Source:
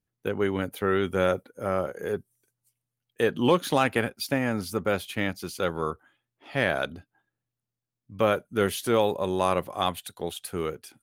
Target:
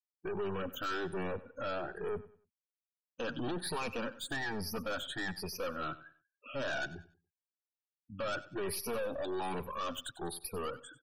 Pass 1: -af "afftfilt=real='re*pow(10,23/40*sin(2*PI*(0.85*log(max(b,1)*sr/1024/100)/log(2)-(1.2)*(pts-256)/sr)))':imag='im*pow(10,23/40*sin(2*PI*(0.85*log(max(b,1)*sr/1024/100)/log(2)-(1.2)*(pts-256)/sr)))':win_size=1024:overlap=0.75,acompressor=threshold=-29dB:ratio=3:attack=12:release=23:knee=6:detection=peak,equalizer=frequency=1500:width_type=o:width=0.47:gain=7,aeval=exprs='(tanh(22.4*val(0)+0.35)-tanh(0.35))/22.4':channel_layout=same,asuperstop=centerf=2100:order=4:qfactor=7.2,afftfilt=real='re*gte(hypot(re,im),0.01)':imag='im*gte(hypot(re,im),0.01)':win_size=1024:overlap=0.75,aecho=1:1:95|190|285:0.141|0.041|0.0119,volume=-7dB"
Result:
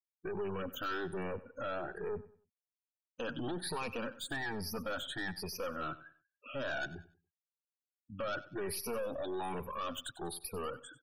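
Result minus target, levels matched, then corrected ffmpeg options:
downward compressor: peak gain reduction +5.5 dB
-af "afftfilt=real='re*pow(10,23/40*sin(2*PI*(0.85*log(max(b,1)*sr/1024/100)/log(2)-(1.2)*(pts-256)/sr)))':imag='im*pow(10,23/40*sin(2*PI*(0.85*log(max(b,1)*sr/1024/100)/log(2)-(1.2)*(pts-256)/sr)))':win_size=1024:overlap=0.75,acompressor=threshold=-21dB:ratio=3:attack=12:release=23:knee=6:detection=peak,equalizer=frequency=1500:width_type=o:width=0.47:gain=7,aeval=exprs='(tanh(22.4*val(0)+0.35)-tanh(0.35))/22.4':channel_layout=same,asuperstop=centerf=2100:order=4:qfactor=7.2,afftfilt=real='re*gte(hypot(re,im),0.01)':imag='im*gte(hypot(re,im),0.01)':win_size=1024:overlap=0.75,aecho=1:1:95|190|285:0.141|0.041|0.0119,volume=-7dB"

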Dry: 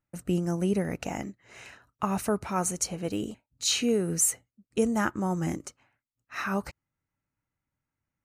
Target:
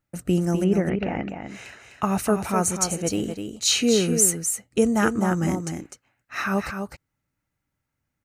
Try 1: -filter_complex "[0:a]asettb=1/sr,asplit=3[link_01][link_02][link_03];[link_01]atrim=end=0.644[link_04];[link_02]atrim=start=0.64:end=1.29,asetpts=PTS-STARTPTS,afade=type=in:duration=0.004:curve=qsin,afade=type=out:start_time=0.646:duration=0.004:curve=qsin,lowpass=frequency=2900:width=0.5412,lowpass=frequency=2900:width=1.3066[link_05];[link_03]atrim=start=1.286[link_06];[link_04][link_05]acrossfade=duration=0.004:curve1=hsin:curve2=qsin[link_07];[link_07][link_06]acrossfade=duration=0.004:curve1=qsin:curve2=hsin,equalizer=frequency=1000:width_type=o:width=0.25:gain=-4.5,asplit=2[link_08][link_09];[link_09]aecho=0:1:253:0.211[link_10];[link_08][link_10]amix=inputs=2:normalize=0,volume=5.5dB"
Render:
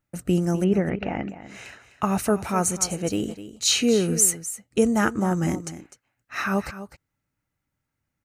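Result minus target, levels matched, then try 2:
echo-to-direct −6.5 dB
-filter_complex "[0:a]asettb=1/sr,asplit=3[link_01][link_02][link_03];[link_01]atrim=end=0.644[link_04];[link_02]atrim=start=0.64:end=1.29,asetpts=PTS-STARTPTS,afade=type=in:duration=0.004:curve=qsin,afade=type=out:start_time=0.646:duration=0.004:curve=qsin,lowpass=frequency=2900:width=0.5412,lowpass=frequency=2900:width=1.3066[link_05];[link_03]atrim=start=1.286[link_06];[link_04][link_05]acrossfade=duration=0.004:curve1=hsin:curve2=qsin[link_07];[link_07][link_06]acrossfade=duration=0.004:curve1=qsin:curve2=hsin,equalizer=frequency=1000:width_type=o:width=0.25:gain=-4.5,asplit=2[link_08][link_09];[link_09]aecho=0:1:253:0.447[link_10];[link_08][link_10]amix=inputs=2:normalize=0,volume=5.5dB"

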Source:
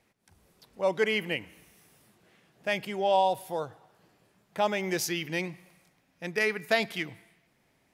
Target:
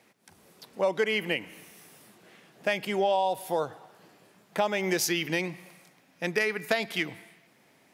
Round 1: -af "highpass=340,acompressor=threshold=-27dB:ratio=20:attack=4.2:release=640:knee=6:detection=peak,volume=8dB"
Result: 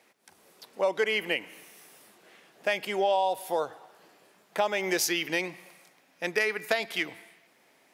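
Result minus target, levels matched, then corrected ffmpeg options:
125 Hz band −8.5 dB
-af "highpass=170,acompressor=threshold=-27dB:ratio=20:attack=4.2:release=640:knee=6:detection=peak,volume=8dB"

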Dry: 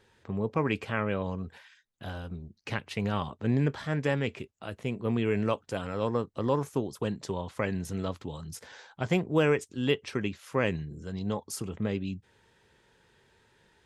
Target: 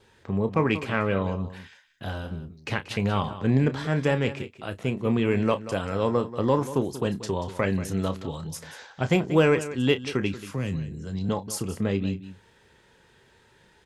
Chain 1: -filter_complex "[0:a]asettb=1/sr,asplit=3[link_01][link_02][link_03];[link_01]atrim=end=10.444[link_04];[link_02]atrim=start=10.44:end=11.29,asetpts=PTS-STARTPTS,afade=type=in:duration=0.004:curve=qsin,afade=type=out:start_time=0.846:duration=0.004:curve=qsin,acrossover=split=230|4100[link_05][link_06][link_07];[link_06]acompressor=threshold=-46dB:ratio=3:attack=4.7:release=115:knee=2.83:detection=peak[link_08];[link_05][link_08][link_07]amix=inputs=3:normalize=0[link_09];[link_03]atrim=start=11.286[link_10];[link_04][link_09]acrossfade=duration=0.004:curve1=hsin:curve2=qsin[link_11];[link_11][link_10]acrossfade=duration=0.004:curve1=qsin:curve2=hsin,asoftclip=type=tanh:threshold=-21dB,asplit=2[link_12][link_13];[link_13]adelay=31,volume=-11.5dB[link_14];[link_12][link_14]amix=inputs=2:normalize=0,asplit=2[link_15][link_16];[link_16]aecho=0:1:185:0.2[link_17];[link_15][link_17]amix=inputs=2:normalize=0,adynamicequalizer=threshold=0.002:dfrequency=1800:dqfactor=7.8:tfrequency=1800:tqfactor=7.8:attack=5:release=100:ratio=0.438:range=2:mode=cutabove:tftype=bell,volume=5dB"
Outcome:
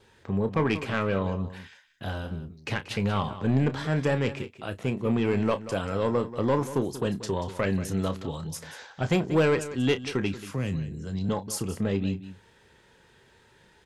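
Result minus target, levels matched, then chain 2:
soft clipping: distortion +16 dB
-filter_complex "[0:a]asettb=1/sr,asplit=3[link_01][link_02][link_03];[link_01]atrim=end=10.444[link_04];[link_02]atrim=start=10.44:end=11.29,asetpts=PTS-STARTPTS,afade=type=in:duration=0.004:curve=qsin,afade=type=out:start_time=0.846:duration=0.004:curve=qsin,acrossover=split=230|4100[link_05][link_06][link_07];[link_06]acompressor=threshold=-46dB:ratio=3:attack=4.7:release=115:knee=2.83:detection=peak[link_08];[link_05][link_08][link_07]amix=inputs=3:normalize=0[link_09];[link_03]atrim=start=11.286[link_10];[link_04][link_09]acrossfade=duration=0.004:curve1=hsin:curve2=qsin[link_11];[link_11][link_10]acrossfade=duration=0.004:curve1=qsin:curve2=hsin,asoftclip=type=tanh:threshold=-10.5dB,asplit=2[link_12][link_13];[link_13]adelay=31,volume=-11.5dB[link_14];[link_12][link_14]amix=inputs=2:normalize=0,asplit=2[link_15][link_16];[link_16]aecho=0:1:185:0.2[link_17];[link_15][link_17]amix=inputs=2:normalize=0,adynamicequalizer=threshold=0.002:dfrequency=1800:dqfactor=7.8:tfrequency=1800:tqfactor=7.8:attack=5:release=100:ratio=0.438:range=2:mode=cutabove:tftype=bell,volume=5dB"

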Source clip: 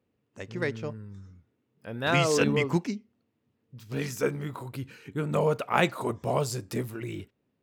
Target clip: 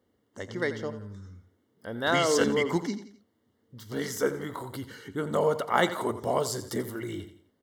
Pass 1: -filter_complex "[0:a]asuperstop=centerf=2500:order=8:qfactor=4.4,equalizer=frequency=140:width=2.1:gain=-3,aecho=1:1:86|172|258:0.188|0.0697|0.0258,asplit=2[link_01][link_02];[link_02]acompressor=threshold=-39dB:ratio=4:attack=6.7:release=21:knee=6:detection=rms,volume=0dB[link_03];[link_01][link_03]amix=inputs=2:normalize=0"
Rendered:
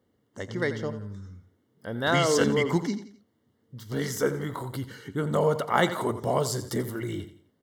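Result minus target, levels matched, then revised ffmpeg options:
downward compressor: peak gain reduction −5.5 dB; 125 Hz band +5.0 dB
-filter_complex "[0:a]asuperstop=centerf=2500:order=8:qfactor=4.4,equalizer=frequency=140:width=2.1:gain=-10.5,aecho=1:1:86|172|258:0.188|0.0697|0.0258,asplit=2[link_01][link_02];[link_02]acompressor=threshold=-47dB:ratio=4:attack=6.7:release=21:knee=6:detection=rms,volume=0dB[link_03];[link_01][link_03]amix=inputs=2:normalize=0"

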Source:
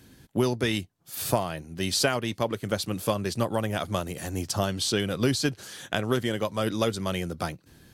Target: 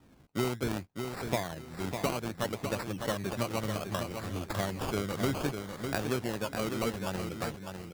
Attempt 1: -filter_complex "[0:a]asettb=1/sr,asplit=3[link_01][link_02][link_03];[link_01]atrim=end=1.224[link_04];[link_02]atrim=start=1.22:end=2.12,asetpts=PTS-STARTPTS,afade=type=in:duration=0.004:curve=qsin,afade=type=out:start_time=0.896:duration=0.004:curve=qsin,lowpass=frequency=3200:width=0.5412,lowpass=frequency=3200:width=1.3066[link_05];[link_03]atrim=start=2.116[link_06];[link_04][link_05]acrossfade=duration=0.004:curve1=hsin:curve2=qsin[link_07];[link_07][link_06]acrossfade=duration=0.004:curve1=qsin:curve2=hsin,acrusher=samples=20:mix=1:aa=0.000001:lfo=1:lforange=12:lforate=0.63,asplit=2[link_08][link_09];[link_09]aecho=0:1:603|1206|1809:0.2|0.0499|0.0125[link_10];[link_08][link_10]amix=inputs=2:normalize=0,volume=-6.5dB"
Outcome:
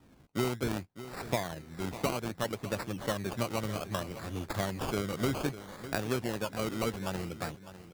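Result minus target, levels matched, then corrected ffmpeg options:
echo-to-direct −7.5 dB
-filter_complex "[0:a]asettb=1/sr,asplit=3[link_01][link_02][link_03];[link_01]atrim=end=1.224[link_04];[link_02]atrim=start=1.22:end=2.12,asetpts=PTS-STARTPTS,afade=type=in:duration=0.004:curve=qsin,afade=type=out:start_time=0.896:duration=0.004:curve=qsin,lowpass=frequency=3200:width=0.5412,lowpass=frequency=3200:width=1.3066[link_05];[link_03]atrim=start=2.116[link_06];[link_04][link_05]acrossfade=duration=0.004:curve1=hsin:curve2=qsin[link_07];[link_07][link_06]acrossfade=duration=0.004:curve1=qsin:curve2=hsin,acrusher=samples=20:mix=1:aa=0.000001:lfo=1:lforange=12:lforate=0.63,asplit=2[link_08][link_09];[link_09]aecho=0:1:603|1206|1809:0.473|0.118|0.0296[link_10];[link_08][link_10]amix=inputs=2:normalize=0,volume=-6.5dB"

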